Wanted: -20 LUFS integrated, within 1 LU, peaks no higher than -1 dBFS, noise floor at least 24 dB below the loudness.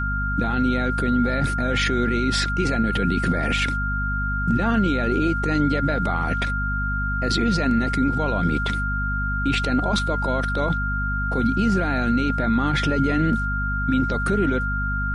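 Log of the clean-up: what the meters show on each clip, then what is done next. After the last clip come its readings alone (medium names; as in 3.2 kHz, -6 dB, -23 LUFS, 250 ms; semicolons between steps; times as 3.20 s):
hum 50 Hz; highest harmonic 250 Hz; hum level -24 dBFS; steady tone 1.4 kHz; tone level -25 dBFS; loudness -22.5 LUFS; peak level -9.0 dBFS; loudness target -20.0 LUFS
-> de-hum 50 Hz, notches 5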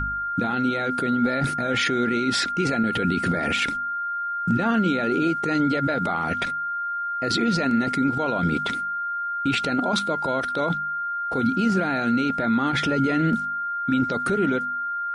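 hum not found; steady tone 1.4 kHz; tone level -25 dBFS
-> band-stop 1.4 kHz, Q 30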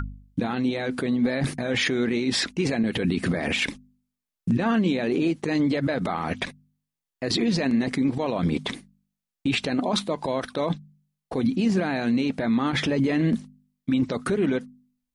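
steady tone not found; loudness -25.5 LUFS; peak level -12.5 dBFS; loudness target -20.0 LUFS
-> trim +5.5 dB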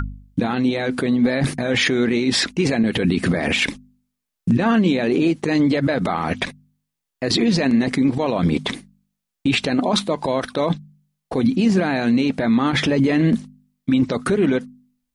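loudness -20.0 LUFS; peak level -7.0 dBFS; noise floor -81 dBFS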